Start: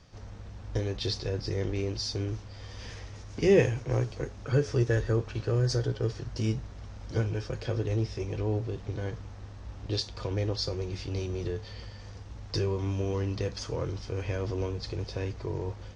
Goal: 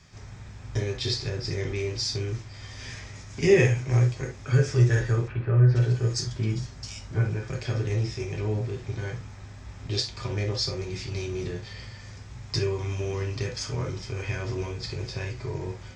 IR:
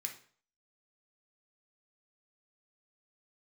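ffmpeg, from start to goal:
-filter_complex "[0:a]asettb=1/sr,asplit=3[a][b][c];[a]atrim=end=5.284[d];[b]atrim=start=5.28:end=7.48,asetpts=PTS-STARTPTS,afade=t=in:d=0.004:c=qsin,afade=t=out:st=2.196:d=0.004:c=qsin,acrossover=split=2600[e][f];[f]adelay=470[g];[e][g]amix=inputs=2:normalize=0,atrim=end_sample=97020[h];[c]atrim=start=7.476[i];[d][h]acrossfade=d=0.004:c1=hsin:c2=qsin[j];[j][i]acrossfade=d=0.004:c1=qsin:c2=hsin[k];[1:a]atrim=start_sample=2205,atrim=end_sample=3528[l];[k][l]afir=irnorm=-1:irlink=0,volume=7dB"

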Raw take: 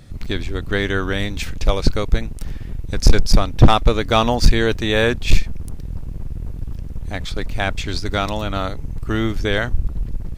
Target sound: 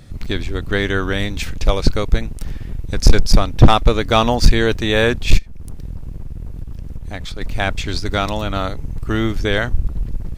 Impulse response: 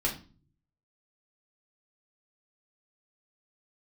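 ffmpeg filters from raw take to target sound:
-filter_complex "[0:a]asplit=3[a][b][c];[a]afade=t=out:st=5.37:d=0.02[d];[b]acompressor=threshold=-25dB:ratio=5,afade=t=in:st=5.37:d=0.02,afade=t=out:st=7.4:d=0.02[e];[c]afade=t=in:st=7.4:d=0.02[f];[d][e][f]amix=inputs=3:normalize=0,volume=1.5dB"

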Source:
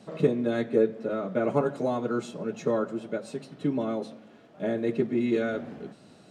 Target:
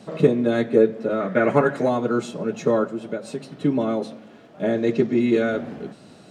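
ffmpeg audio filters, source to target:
-filter_complex "[0:a]asettb=1/sr,asplit=3[a][b][c];[a]atrim=end=1.204[d];[b]atrim=start=1.2:end=1.89,asetpts=PTS-STARTPTS,afade=t=in:d=0.004:c=qsin,afade=t=out:st=0.686:d=0.004:c=qsin,equalizer=f=1.8k:t=o:w=0.66:g=13[e];[c]atrim=start=1.886[f];[d][e]acrossfade=d=0.004:c1=hsin:c2=qsin[g];[g][f]acrossfade=d=0.004:c1=qsin:c2=hsin,asplit=3[h][i][j];[h]afade=t=out:st=2.87:d=0.02[k];[i]acompressor=threshold=-31dB:ratio=3,afade=t=in:st=2.87:d=0.02,afade=t=out:st=3.54:d=0.02[l];[j]afade=t=in:st=3.54:d=0.02[m];[k][l][m]amix=inputs=3:normalize=0,asettb=1/sr,asplit=3[n][o][p];[n]atrim=end=4.734[q];[o]atrim=start=4.73:end=5.21,asetpts=PTS-STARTPTS,afade=t=in:d=0.004:c=qsin,afade=t=out:st=0.476:d=0.004:c=qsin,lowpass=f=6.2k:t=q:w=2.2[r];[p]atrim=start=5.206[s];[q][r]acrossfade=d=0.004:c1=hsin:c2=qsin[t];[t][s]acrossfade=d=0.004:c1=qsin:c2=hsin,volume=6.5dB"

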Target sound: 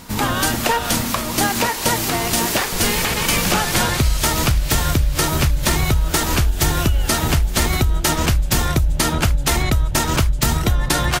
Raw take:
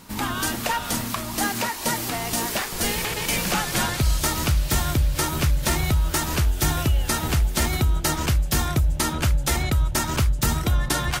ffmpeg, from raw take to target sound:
-filter_complex "[0:a]asplit=2[a][b];[b]asetrate=22050,aresample=44100,atempo=2,volume=-6dB[c];[a][c]amix=inputs=2:normalize=0,acompressor=threshold=-19dB:ratio=6,volume=6.5dB"

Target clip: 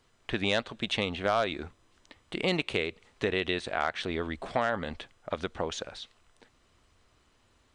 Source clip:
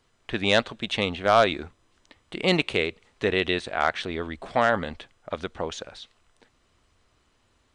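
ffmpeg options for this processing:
-af "acompressor=threshold=-27dB:ratio=2.5"

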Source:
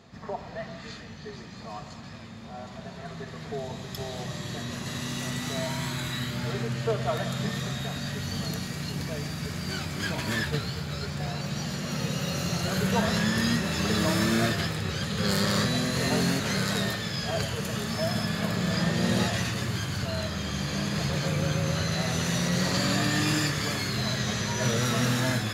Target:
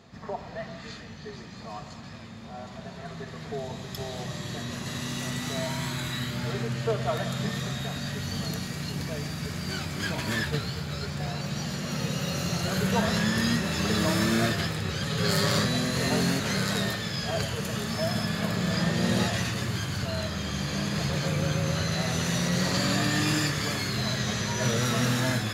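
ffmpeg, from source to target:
-filter_complex "[0:a]asettb=1/sr,asplit=3[a][b][c];[a]atrim=end=15.054[d];[b]atrim=start=15.05:end=15.59,asetpts=PTS-STARTPTS,afade=t=in:d=0.004:c=qsin,afade=t=out:st=0.536:d=0.004:c=qsin,aecho=1:1:7.1:0.64,atrim=end_sample=23814[e];[c]atrim=start=15.586[f];[d][e]acrossfade=d=0.004:c1=hsin:c2=qsin[g];[g][f]acrossfade=d=0.004:c1=qsin:c2=hsin"

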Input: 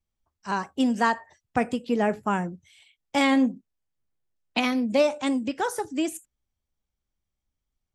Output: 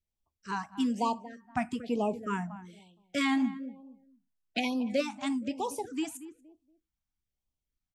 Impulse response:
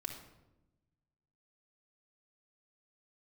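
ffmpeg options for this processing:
-filter_complex "[0:a]asplit=2[a][b];[b]adelay=234,lowpass=f=1.1k:p=1,volume=-13dB,asplit=2[c][d];[d]adelay=234,lowpass=f=1.1k:p=1,volume=0.27,asplit=2[e][f];[f]adelay=234,lowpass=f=1.1k:p=1,volume=0.27[g];[a][c][e][g]amix=inputs=4:normalize=0,afftfilt=real='re*(1-between(b*sr/1024,420*pow(1800/420,0.5+0.5*sin(2*PI*1.1*pts/sr))/1.41,420*pow(1800/420,0.5+0.5*sin(2*PI*1.1*pts/sr))*1.41))':imag='im*(1-between(b*sr/1024,420*pow(1800/420,0.5+0.5*sin(2*PI*1.1*pts/sr))/1.41,420*pow(1800/420,0.5+0.5*sin(2*PI*1.1*pts/sr))*1.41))':win_size=1024:overlap=0.75,volume=-6dB"

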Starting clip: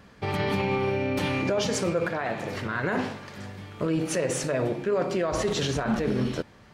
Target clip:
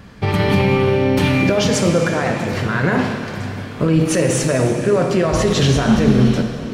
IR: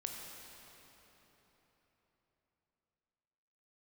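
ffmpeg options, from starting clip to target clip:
-filter_complex "[0:a]bass=f=250:g=7,treble=f=4k:g=-5,asplit=2[a][b];[1:a]atrim=start_sample=2205,highshelf=f=3.1k:g=11.5[c];[b][c]afir=irnorm=-1:irlink=0,volume=2dB[d];[a][d]amix=inputs=2:normalize=0,volume=2dB"

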